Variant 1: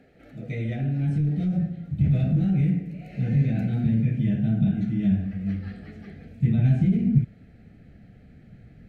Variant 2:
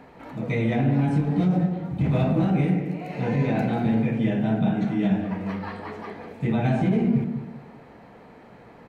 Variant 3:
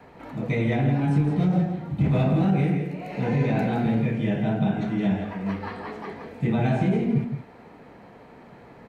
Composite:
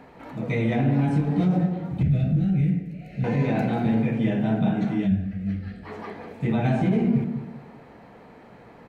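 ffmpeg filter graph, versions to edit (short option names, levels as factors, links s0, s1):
-filter_complex "[0:a]asplit=2[s0][s1];[1:a]asplit=3[s2][s3][s4];[s2]atrim=end=2.032[s5];[s0]atrim=start=2.028:end=3.242[s6];[s3]atrim=start=3.238:end=5.1[s7];[s1]atrim=start=5:end=5.92[s8];[s4]atrim=start=5.82[s9];[s5][s6]acrossfade=d=0.004:c1=hsin:c2=hsin[s10];[s10][s7]acrossfade=d=0.004:c1=hsin:c2=hsin[s11];[s11][s8]acrossfade=d=0.1:c1=tri:c2=tri[s12];[s12][s9]acrossfade=d=0.1:c1=tri:c2=tri"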